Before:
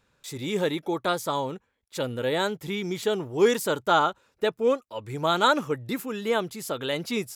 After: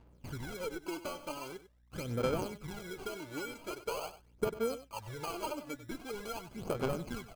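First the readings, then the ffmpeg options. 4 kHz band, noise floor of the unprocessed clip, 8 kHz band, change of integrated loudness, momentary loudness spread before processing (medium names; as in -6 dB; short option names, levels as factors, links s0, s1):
-15.5 dB, -71 dBFS, -10.0 dB, -13.0 dB, 11 LU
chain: -filter_complex "[0:a]acrossover=split=4300[s0][s1];[s1]acompressor=threshold=0.00708:ratio=4:attack=1:release=60[s2];[s0][s2]amix=inputs=2:normalize=0,asubboost=boost=3:cutoff=94,acompressor=threshold=0.02:ratio=8,aeval=exprs='val(0)+0.000562*(sin(2*PI*60*n/s)+sin(2*PI*2*60*n/s)/2+sin(2*PI*3*60*n/s)/3+sin(2*PI*4*60*n/s)/4+sin(2*PI*5*60*n/s)/5)':c=same,acrusher=samples=24:mix=1:aa=0.000001,aphaser=in_gain=1:out_gain=1:delay=3.5:decay=0.67:speed=0.44:type=sinusoidal,aeval=exprs='0.158*(cos(1*acos(clip(val(0)/0.158,-1,1)))-cos(1*PI/2))+0.02*(cos(3*acos(clip(val(0)/0.158,-1,1)))-cos(3*PI/2))':c=same,asplit=2[s3][s4];[s4]aecho=0:1:96:0.211[s5];[s3][s5]amix=inputs=2:normalize=0,volume=0.841"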